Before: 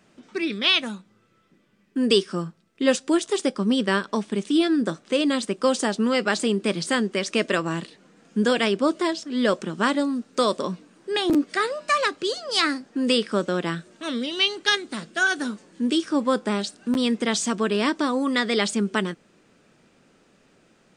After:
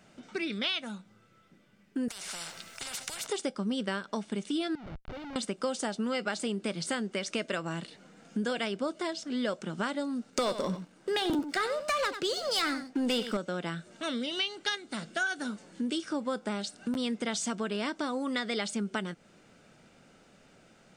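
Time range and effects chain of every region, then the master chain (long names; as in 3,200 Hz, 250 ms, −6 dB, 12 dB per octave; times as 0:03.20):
0:02.08–0:03.27: tilt shelving filter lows −9 dB, about 690 Hz + downward compressor, threshold −24 dBFS + every bin compressed towards the loudest bin 10 to 1
0:04.75–0:05.36: downward compressor 2.5 to 1, threshold −44 dBFS + comparator with hysteresis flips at −45 dBFS + high-frequency loss of the air 230 metres
0:10.30–0:13.37: leveller curve on the samples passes 2 + single-tap delay 93 ms −12.5 dB
whole clip: comb filter 1.4 ms, depth 31%; downward compressor 3 to 1, threshold −32 dBFS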